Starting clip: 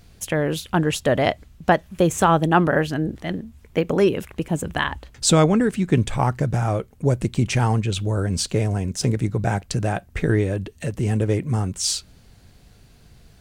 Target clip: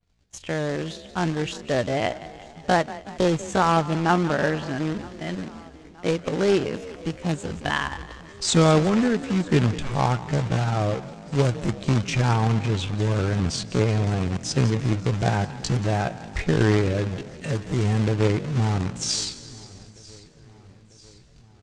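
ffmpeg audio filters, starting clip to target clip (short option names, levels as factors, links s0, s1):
-filter_complex "[0:a]asplit=2[s0][s1];[s1]asplit=5[s2][s3][s4][s5][s6];[s2]adelay=110,afreqshift=31,volume=0.168[s7];[s3]adelay=220,afreqshift=62,volume=0.0944[s8];[s4]adelay=330,afreqshift=93,volume=0.0525[s9];[s5]adelay=440,afreqshift=124,volume=0.0295[s10];[s6]adelay=550,afreqshift=155,volume=0.0166[s11];[s7][s8][s9][s10][s11]amix=inputs=5:normalize=0[s12];[s0][s12]amix=inputs=2:normalize=0,dynaudnorm=f=570:g=5:m=2,acrusher=bits=2:mode=log:mix=0:aa=0.000001,lowpass=f=7400:w=0.5412,lowpass=f=7400:w=1.3066,atempo=0.62,agate=range=0.0224:threshold=0.0112:ratio=3:detection=peak,asplit=2[s13][s14];[s14]aecho=0:1:945|1890|2835|3780:0.0668|0.0394|0.0233|0.0137[s15];[s13][s15]amix=inputs=2:normalize=0,adynamicequalizer=threshold=0.02:dfrequency=3700:dqfactor=0.7:tfrequency=3700:tqfactor=0.7:attack=5:release=100:ratio=0.375:range=3:mode=cutabove:tftype=highshelf,volume=0.501"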